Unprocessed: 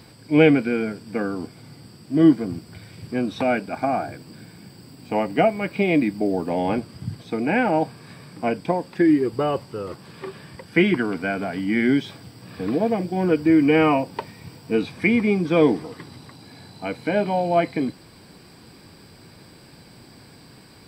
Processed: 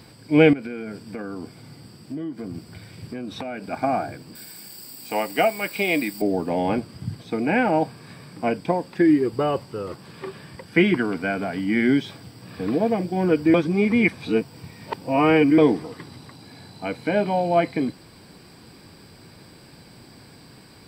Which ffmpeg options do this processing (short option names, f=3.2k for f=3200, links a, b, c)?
-filter_complex "[0:a]asettb=1/sr,asplit=3[a][b][c];[a]atrim=end=0.534[d];[b]atrim=start=0.53:end=3.71,asetpts=PTS-STARTPTS,afade=t=in:d=0.004:c=qsin,afade=t=out:st=3.176:d=0.004:c=qsin,acompressor=threshold=-28dB:ratio=8:attack=3.2:release=140:knee=1:detection=peak[e];[c]atrim=start=3.706[f];[d][e]acrossfade=d=0.004:c1=hsin:c2=qsin[g];[g][f]acrossfade=d=0.004:c1=qsin:c2=hsin,asettb=1/sr,asplit=3[h][i][j];[h]atrim=end=4.354[k];[i]atrim=start=4.35:end=6.22,asetpts=PTS-STARTPTS,afade=t=in:d=0.004:c=qsin,afade=t=out:st=1.866:d=0.004:c=qsin,aemphasis=mode=production:type=riaa[l];[j]atrim=start=6.216[m];[k][l]acrossfade=d=0.004:c1=hsin:c2=qsin[n];[n][m]acrossfade=d=0.004:c1=qsin:c2=hsin,asplit=3[o][p][q];[o]atrim=end=13.542[r];[p]atrim=start=13.538:end=15.582,asetpts=PTS-STARTPTS,areverse[s];[q]atrim=start=15.578[t];[r][s]acrossfade=d=0.004:c1=hsin:c2=hsin[u];[u][t]acrossfade=d=0.004:c1=hsin:c2=hsin"